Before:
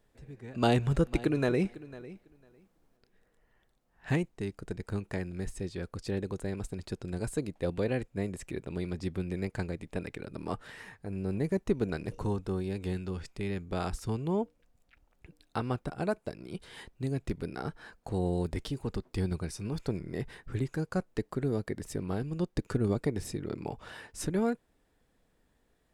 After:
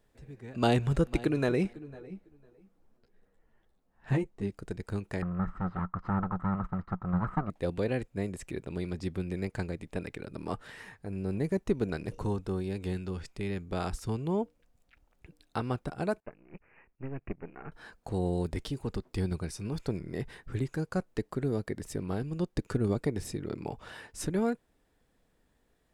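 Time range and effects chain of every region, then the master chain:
0:01.73–0:04.50: tilt shelving filter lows +4 dB, about 1,400 Hz + string-ensemble chorus
0:05.22–0:07.50: lower of the sound and its delayed copy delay 1 ms + low-pass with resonance 1,300 Hz, resonance Q 12 + parametric band 180 Hz +11 dB 0.34 octaves
0:16.20–0:17.72: gain on one half-wave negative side −12 dB + bad sample-rate conversion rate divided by 8×, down none, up filtered + expander for the loud parts, over −50 dBFS
whole clip: no processing

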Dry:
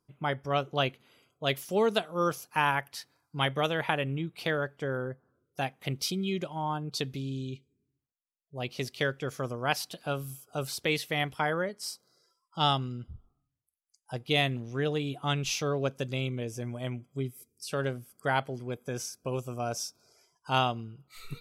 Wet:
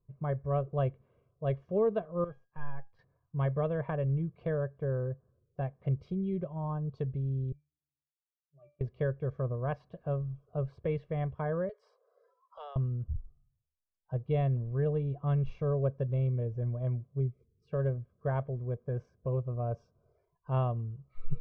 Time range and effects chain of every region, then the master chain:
0:02.24–0:02.99: leveller curve on the samples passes 2 + tuned comb filter 810 Hz, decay 0.26 s, mix 90%
0:07.52–0:08.81: high-pass filter 590 Hz 6 dB per octave + resonances in every octave D, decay 0.27 s
0:11.69–0:12.76: Butterworth high-pass 420 Hz 96 dB per octave + multiband upward and downward compressor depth 70%
whole clip: low-pass filter 1,400 Hz 12 dB per octave; spectral tilt −4 dB per octave; comb filter 1.8 ms, depth 68%; level −8.5 dB

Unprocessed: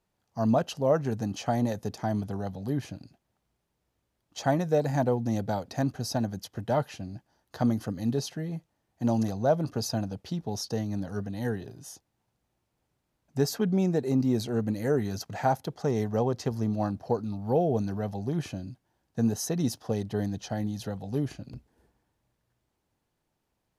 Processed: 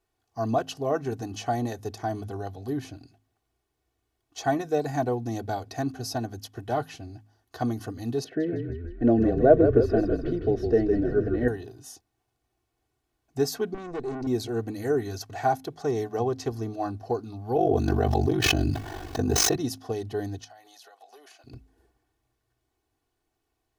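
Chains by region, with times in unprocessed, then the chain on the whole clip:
0:08.24–0:11.48: drawn EQ curve 100 Hz 0 dB, 190 Hz +8 dB, 590 Hz +13 dB, 890 Hz −12 dB, 1,700 Hz +8 dB, 6,100 Hz −23 dB + echo with shifted repeats 158 ms, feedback 55%, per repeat −43 Hz, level −6 dB
0:13.74–0:14.27: Chebyshev low-pass filter 9,400 Hz, order 4 + tilt shelving filter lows +3.5 dB, about 1,200 Hz + tube saturation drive 28 dB, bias 0.55
0:17.56–0:19.56: running median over 5 samples + ring modulation 24 Hz + envelope flattener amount 100%
0:20.44–0:21.44: high-pass filter 620 Hz 24 dB per octave + downward compressor 8 to 1, threshold −48 dBFS
whole clip: comb filter 2.7 ms, depth 79%; hum removal 52.73 Hz, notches 5; level −1.5 dB

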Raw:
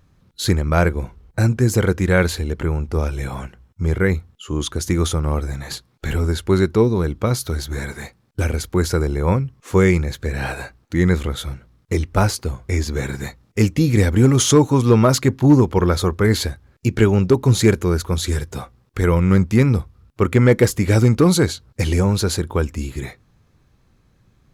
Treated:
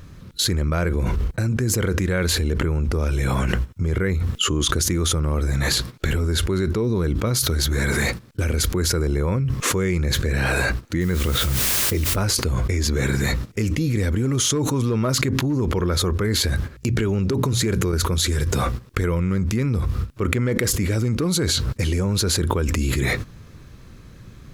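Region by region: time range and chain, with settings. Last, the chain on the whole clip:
0:11.00–0:12.15: low-pass that shuts in the quiet parts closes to 670 Hz, open at −13.5 dBFS + background noise white −39 dBFS
0:16.42–0:17.93: mains-hum notches 60/120/180 Hz + downward compressor 3 to 1, threshold −29 dBFS
whole clip: noise gate −45 dBFS, range −13 dB; parametric band 800 Hz −7 dB 0.5 octaves; envelope flattener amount 100%; level −12.5 dB

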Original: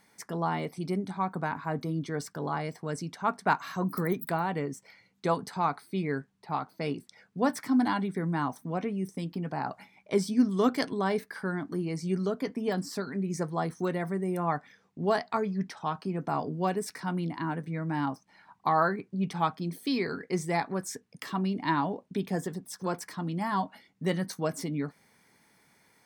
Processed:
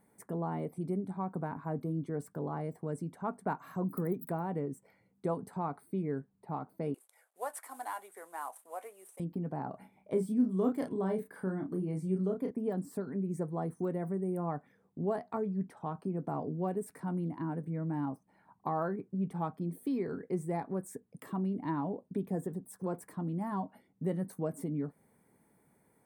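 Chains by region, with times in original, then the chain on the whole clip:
0:06.94–0:09.20: variable-slope delta modulation 64 kbit/s + high-pass filter 600 Hz 24 dB per octave + spectral tilt +2 dB per octave
0:09.70–0:12.51: parametric band 3,300 Hz +3.5 dB 0.36 octaves + double-tracking delay 32 ms −5 dB
whole clip: drawn EQ curve 500 Hz 0 dB, 5,500 Hz −24 dB, 8,800 Hz −5 dB; downward compressor 1.5 to 1, threshold −36 dBFS

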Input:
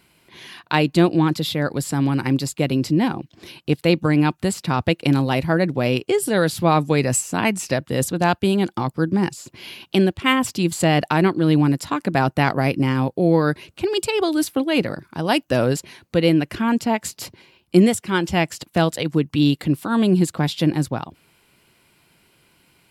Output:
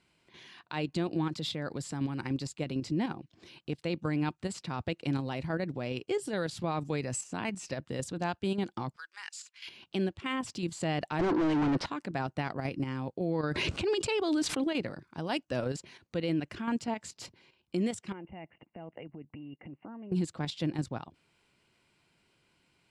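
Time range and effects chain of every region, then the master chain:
0:08.96–0:09.68: high-pass filter 1,400 Hz 24 dB per octave + leveller curve on the samples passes 1
0:11.19–0:11.86: Savitzky-Golay smoothing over 15 samples + mid-hump overdrive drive 38 dB, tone 1,100 Hz, clips at −5.5 dBFS
0:13.44–0:14.72: running median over 3 samples + high-shelf EQ 11,000 Hz −4 dB + envelope flattener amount 100%
0:18.12–0:20.12: parametric band 230 Hz +8.5 dB 2.4 octaves + downward compressor 3 to 1, threshold −26 dBFS + Chebyshev low-pass with heavy ripple 2,900 Hz, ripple 9 dB
whole clip: low-pass filter 8,400 Hz 24 dB per octave; output level in coarse steps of 9 dB; brickwall limiter −14.5 dBFS; level −8 dB

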